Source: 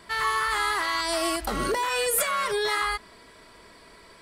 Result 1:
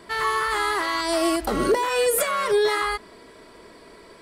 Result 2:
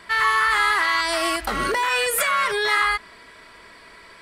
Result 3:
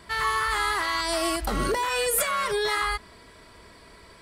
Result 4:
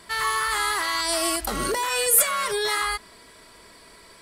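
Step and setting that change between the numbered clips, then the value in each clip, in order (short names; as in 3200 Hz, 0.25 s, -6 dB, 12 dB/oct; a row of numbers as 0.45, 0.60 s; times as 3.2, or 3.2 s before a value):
bell, frequency: 370, 1900, 71, 12000 Hz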